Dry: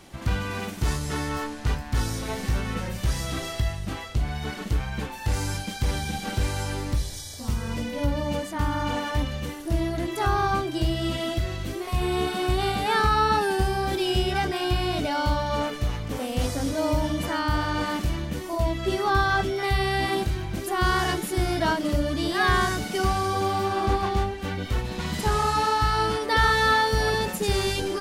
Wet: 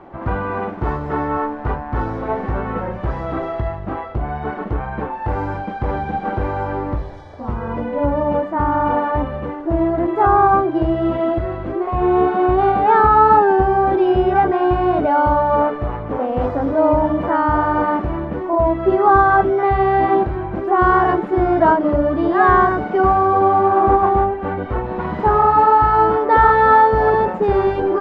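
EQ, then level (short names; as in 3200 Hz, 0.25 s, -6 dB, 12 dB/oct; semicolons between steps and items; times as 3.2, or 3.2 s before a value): LPF 1200 Hz 12 dB/oct; bell 350 Hz +4 dB 0.48 oct; bell 920 Hz +13 dB 2.8 oct; +1.0 dB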